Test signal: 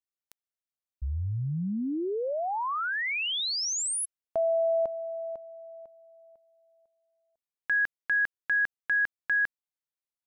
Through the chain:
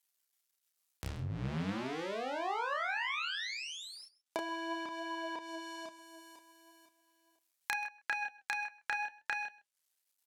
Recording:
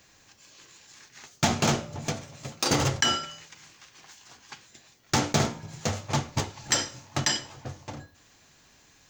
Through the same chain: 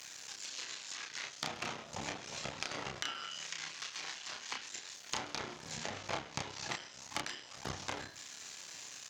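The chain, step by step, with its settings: cycle switcher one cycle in 2, muted; HPF 67 Hz; in parallel at -1 dB: level quantiser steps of 14 dB; on the sum: tilt +3 dB/oct; compressor 10:1, threshold -37 dBFS; flange 0.39 Hz, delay 0.9 ms, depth 6.5 ms, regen +73%; treble ducked by the level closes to 2900 Hz, closed at -43 dBFS; doubler 31 ms -3.5 dB; echo 0.131 s -21 dB; gain +8 dB

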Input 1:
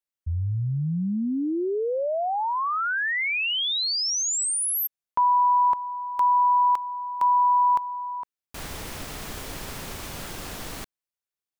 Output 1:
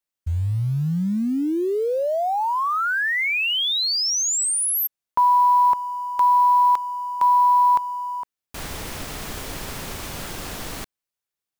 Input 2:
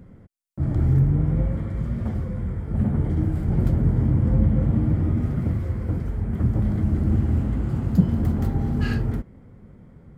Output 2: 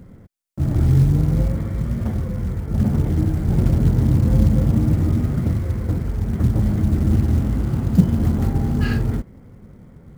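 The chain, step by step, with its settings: short-mantissa float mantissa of 4-bit; gain +3.5 dB

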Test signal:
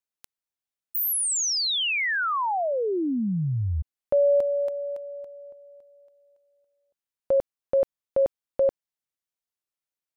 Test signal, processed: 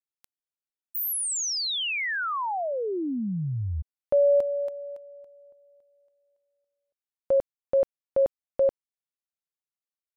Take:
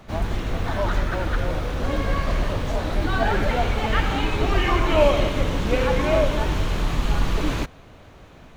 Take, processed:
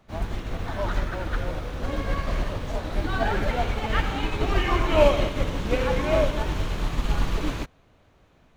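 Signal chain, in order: upward expander 1.5:1, over -38 dBFS

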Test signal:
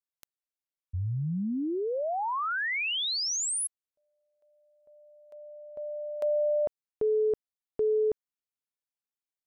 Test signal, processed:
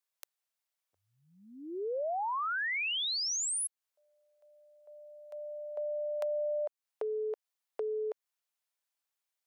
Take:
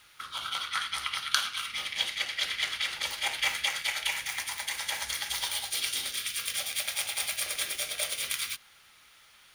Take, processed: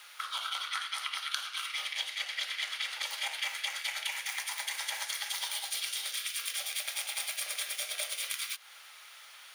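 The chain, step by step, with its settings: HPF 540 Hz 24 dB/oct; compressor 4:1, threshold -40 dBFS; gain +6 dB

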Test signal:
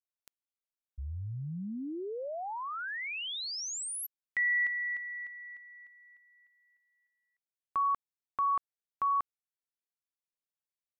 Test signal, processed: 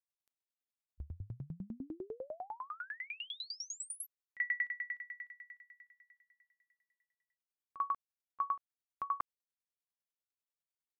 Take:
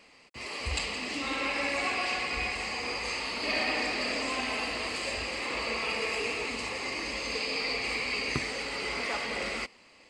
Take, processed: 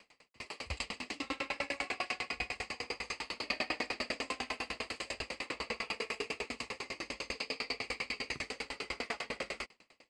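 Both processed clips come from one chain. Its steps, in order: dB-ramp tremolo decaying 10 Hz, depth 32 dB; gain +1 dB

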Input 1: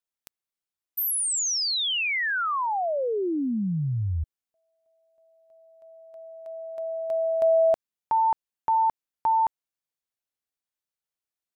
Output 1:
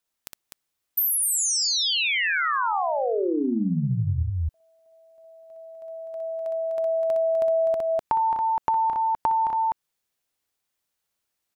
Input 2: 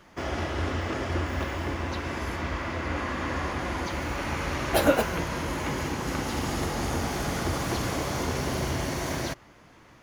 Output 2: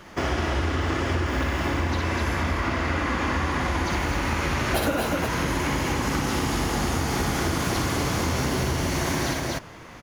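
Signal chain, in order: loudspeakers at several distances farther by 21 m -4 dB, 86 m -5 dB; dynamic EQ 580 Hz, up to -4 dB, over -36 dBFS, Q 1.9; compressor 6:1, threshold -30 dBFS; gain +8.5 dB

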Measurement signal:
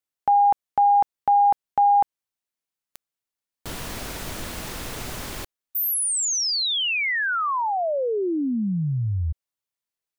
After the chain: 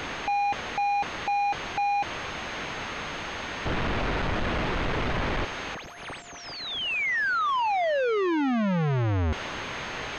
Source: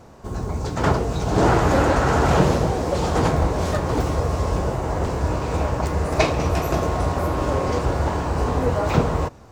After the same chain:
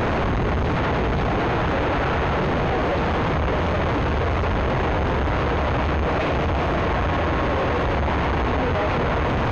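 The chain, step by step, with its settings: infinite clipping; pulse-width modulation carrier 6400 Hz

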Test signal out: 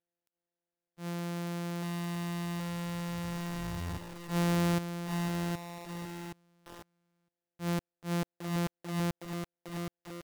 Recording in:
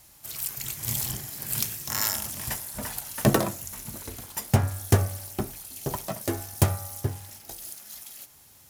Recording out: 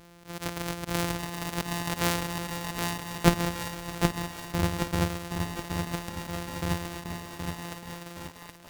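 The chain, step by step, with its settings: sample sorter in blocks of 256 samples; auto swell 0.102 s; lo-fi delay 0.771 s, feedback 55%, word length 7-bit, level -4 dB; gain +1 dB

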